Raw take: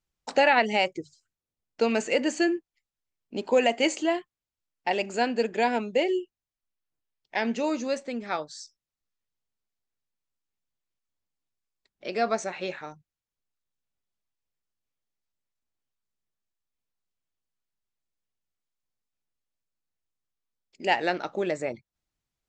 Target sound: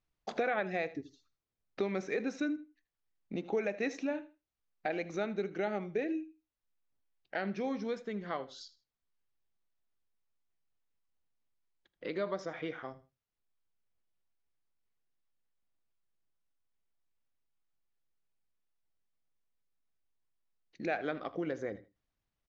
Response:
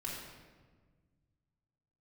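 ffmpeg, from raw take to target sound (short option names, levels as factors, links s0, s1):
-filter_complex "[0:a]aemphasis=mode=reproduction:type=50fm,acompressor=threshold=0.01:ratio=2,asetrate=38170,aresample=44100,atempo=1.15535,aecho=1:1:79|158:0.133|0.0307,asplit=2[s0][s1];[1:a]atrim=start_sample=2205,afade=t=out:st=0.17:d=0.01,atrim=end_sample=7938[s2];[s1][s2]afir=irnorm=-1:irlink=0,volume=0.106[s3];[s0][s3]amix=inputs=2:normalize=0"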